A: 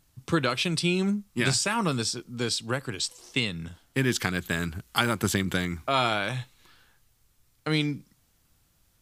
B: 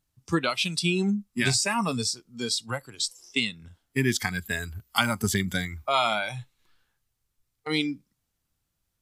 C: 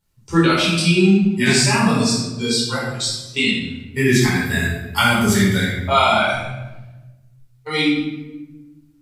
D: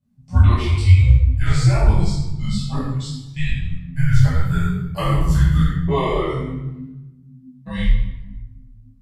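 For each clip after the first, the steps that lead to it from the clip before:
noise reduction from a noise print of the clip's start 14 dB; level +1.5 dB
rectangular room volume 530 cubic metres, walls mixed, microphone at 4.6 metres; level −1.5 dB
tilt shelving filter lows +9.5 dB, about 920 Hz; frequency shifter −260 Hz; micro pitch shift up and down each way 37 cents; level −1 dB

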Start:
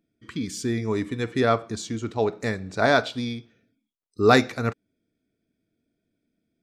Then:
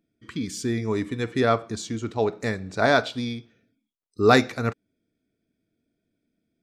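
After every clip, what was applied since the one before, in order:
no processing that can be heard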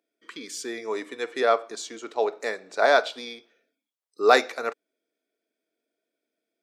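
four-pole ladder high-pass 380 Hz, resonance 25%
level +5.5 dB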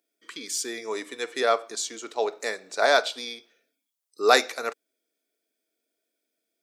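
high-shelf EQ 3,900 Hz +12 dB
level −2 dB

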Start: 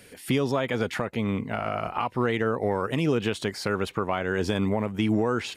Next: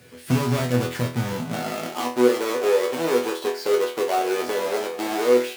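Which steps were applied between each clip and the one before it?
each half-wave held at its own peak
high-pass filter sweep 110 Hz → 430 Hz, 0:01.18–0:02.36
resonators tuned to a chord E2 fifth, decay 0.36 s
level +8 dB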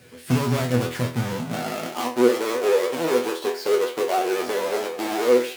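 pitch vibrato 14 Hz 45 cents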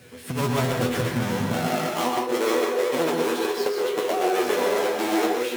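notch filter 4,700 Hz, Q 23
compressor whose output falls as the input rises −24 dBFS, ratio −1
convolution reverb RT60 0.40 s, pre-delay 116 ms, DRR 1.5 dB
level −1 dB

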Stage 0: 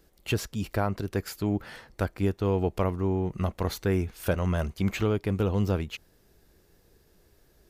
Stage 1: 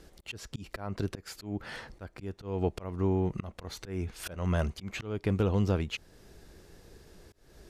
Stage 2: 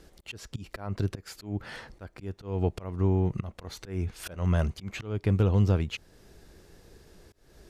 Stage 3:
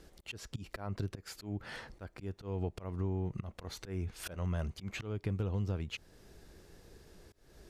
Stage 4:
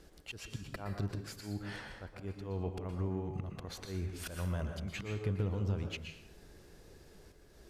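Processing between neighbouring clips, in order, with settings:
low-pass filter 9,400 Hz 12 dB per octave; downward compressor 1.5 to 1, threshold −48 dBFS, peak gain reduction 10 dB; volume swells 256 ms; level +8 dB
dynamic equaliser 110 Hz, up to +7 dB, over −43 dBFS, Q 1.3
downward compressor 2.5 to 1, threshold −32 dBFS, peak gain reduction 9.5 dB; level −3 dB
dense smooth reverb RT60 0.72 s, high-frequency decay 0.8×, pre-delay 105 ms, DRR 4 dB; level −1 dB

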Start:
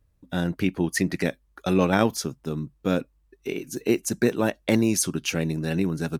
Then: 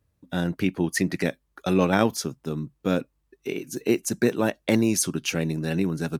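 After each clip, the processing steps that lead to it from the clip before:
high-pass filter 80 Hz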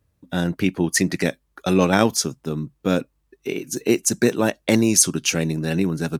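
dynamic equaliser 7,000 Hz, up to +7 dB, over −44 dBFS, Q 0.82
level +3.5 dB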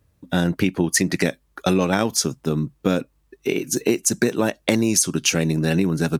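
downward compressor, threshold −20 dBFS, peak gain reduction 9.5 dB
level +5 dB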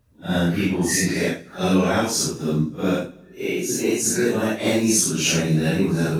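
random phases in long frames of 200 ms
on a send at −18 dB: convolution reverb RT60 1.2 s, pre-delay 9 ms

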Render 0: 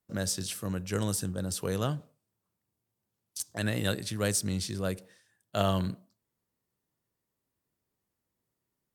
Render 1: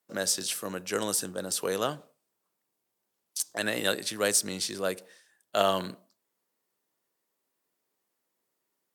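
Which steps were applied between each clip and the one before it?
high-pass filter 360 Hz 12 dB per octave
level +5 dB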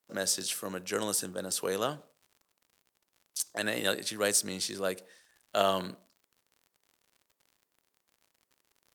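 surface crackle 72 per second −47 dBFS
level −2 dB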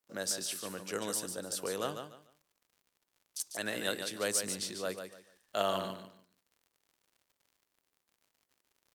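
repeating echo 146 ms, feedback 25%, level −7.5 dB
level −5 dB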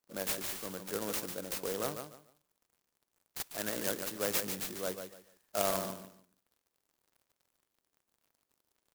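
converter with an unsteady clock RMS 0.11 ms

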